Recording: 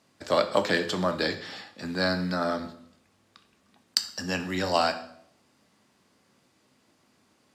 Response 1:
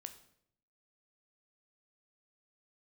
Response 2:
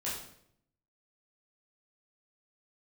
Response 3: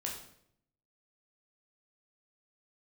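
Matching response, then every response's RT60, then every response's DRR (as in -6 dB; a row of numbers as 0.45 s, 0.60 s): 1; 0.70 s, 0.70 s, 0.70 s; 7.5 dB, -8.5 dB, -2.0 dB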